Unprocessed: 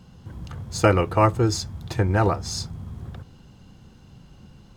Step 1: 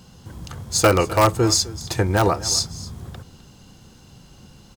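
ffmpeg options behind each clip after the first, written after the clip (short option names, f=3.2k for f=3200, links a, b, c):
-filter_complex "[0:a]bass=f=250:g=-4,treble=f=4k:g=9,asplit=2[a][b];[b]aeval=exprs='(mod(2.99*val(0)+1,2)-1)/2.99':c=same,volume=-5.5dB[c];[a][c]amix=inputs=2:normalize=0,aecho=1:1:256:0.126"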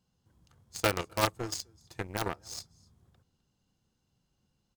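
-af "aeval=exprs='0.794*(cos(1*acos(clip(val(0)/0.794,-1,1)))-cos(1*PI/2))+0.251*(cos(3*acos(clip(val(0)/0.794,-1,1)))-cos(3*PI/2))':c=same,volume=-3.5dB"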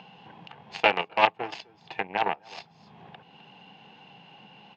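-filter_complex "[0:a]highpass=f=200:w=0.5412,highpass=f=200:w=1.3066,equalizer=f=240:t=q:w=4:g=-10,equalizer=f=340:t=q:w=4:g=-10,equalizer=f=540:t=q:w=4:g=-5,equalizer=f=820:t=q:w=4:g=9,equalizer=f=1.3k:t=q:w=4:g=-9,equalizer=f=2.7k:t=q:w=4:g=8,lowpass=f=3k:w=0.5412,lowpass=f=3k:w=1.3066,asplit=2[a][b];[b]acompressor=mode=upward:threshold=-32dB:ratio=2.5,volume=3dB[c];[a][c]amix=inputs=2:normalize=0"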